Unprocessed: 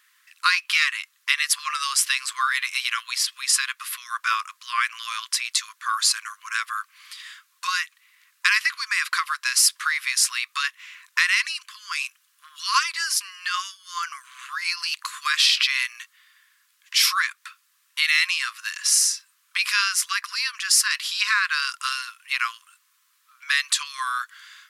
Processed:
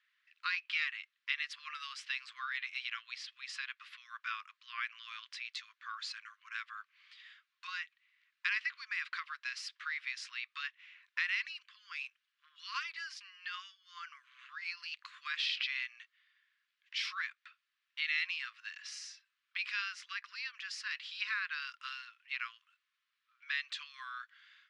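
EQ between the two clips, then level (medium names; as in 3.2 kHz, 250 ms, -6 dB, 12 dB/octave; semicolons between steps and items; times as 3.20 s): high-pass 1.3 kHz 12 dB/octave; Bessel low-pass 2 kHz, order 4; differentiator; +1.0 dB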